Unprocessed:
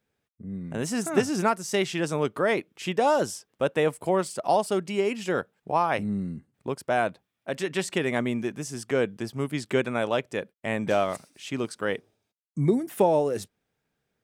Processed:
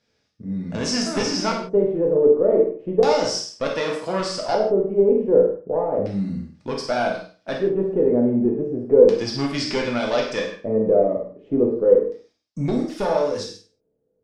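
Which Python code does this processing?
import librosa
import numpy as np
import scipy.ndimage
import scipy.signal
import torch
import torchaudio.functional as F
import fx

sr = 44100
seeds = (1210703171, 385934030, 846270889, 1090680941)

y = fx.diode_clip(x, sr, knee_db=-20.5)
y = fx.highpass(y, sr, hz=120.0, slope=12, at=(3.71, 4.2))
y = fx.room_flutter(y, sr, wall_m=8.5, rt60_s=0.35)
y = fx.rider(y, sr, range_db=3, speed_s=0.5)
y = fx.filter_lfo_lowpass(y, sr, shape='square', hz=0.33, low_hz=460.0, high_hz=5200.0, q=4.1)
y = fx.rev_gated(y, sr, seeds[0], gate_ms=190, shape='falling', drr_db=-0.5)
y = F.gain(torch.from_numpy(y), 1.0).numpy()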